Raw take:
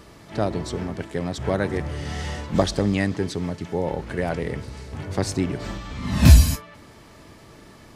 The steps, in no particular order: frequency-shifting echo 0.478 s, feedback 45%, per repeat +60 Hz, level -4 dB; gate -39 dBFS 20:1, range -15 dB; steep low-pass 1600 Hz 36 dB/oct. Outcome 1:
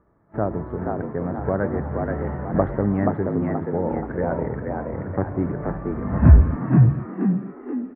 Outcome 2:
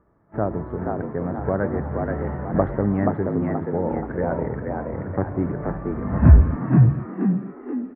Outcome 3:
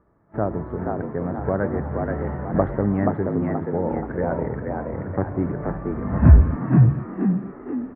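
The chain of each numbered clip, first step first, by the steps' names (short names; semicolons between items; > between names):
steep low-pass > gate > frequency-shifting echo; gate > steep low-pass > frequency-shifting echo; steep low-pass > frequency-shifting echo > gate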